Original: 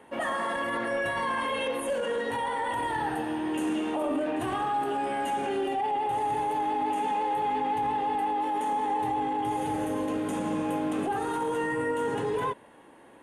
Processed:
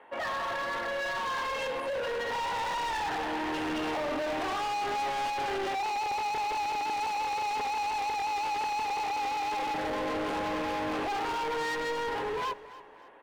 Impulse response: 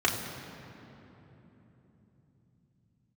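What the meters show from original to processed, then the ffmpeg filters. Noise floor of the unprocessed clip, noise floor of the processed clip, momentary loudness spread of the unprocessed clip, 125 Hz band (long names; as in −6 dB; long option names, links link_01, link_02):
−53 dBFS, −48 dBFS, 2 LU, −7.0 dB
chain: -filter_complex "[0:a]acrossover=split=450 3400:gain=0.141 1 0.0631[link_01][link_02][link_03];[link_01][link_02][link_03]amix=inputs=3:normalize=0,dynaudnorm=framelen=850:gausssize=7:maxgain=10dB,alimiter=limit=-18.5dB:level=0:latency=1:release=37,asoftclip=type=hard:threshold=-32dB,aecho=1:1:284|568|852:0.133|0.0533|0.0213,volume=1.5dB"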